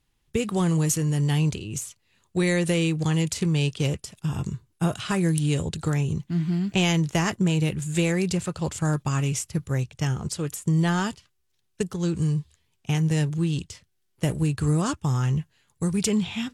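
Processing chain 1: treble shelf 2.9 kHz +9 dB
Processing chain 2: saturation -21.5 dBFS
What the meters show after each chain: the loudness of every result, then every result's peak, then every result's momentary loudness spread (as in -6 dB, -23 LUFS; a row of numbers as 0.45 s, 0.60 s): -24.0 LUFS, -28.5 LUFS; -1.5 dBFS, -21.5 dBFS; 9 LU, 7 LU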